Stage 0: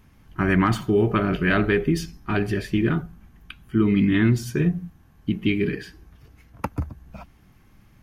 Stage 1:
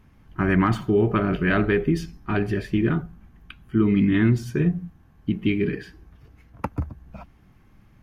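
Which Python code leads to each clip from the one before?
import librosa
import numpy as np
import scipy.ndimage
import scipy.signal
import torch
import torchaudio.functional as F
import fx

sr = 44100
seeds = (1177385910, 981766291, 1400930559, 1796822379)

y = fx.high_shelf(x, sr, hz=3500.0, db=-8.5)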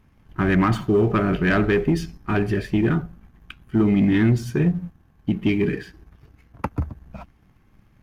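y = fx.leveller(x, sr, passes=1)
y = F.gain(torch.from_numpy(y), -1.0).numpy()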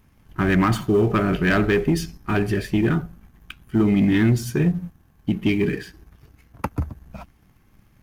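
y = fx.high_shelf(x, sr, hz=5600.0, db=11.0)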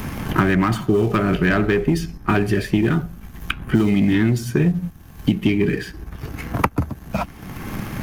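y = fx.band_squash(x, sr, depth_pct=100)
y = F.gain(torch.from_numpy(y), 1.5).numpy()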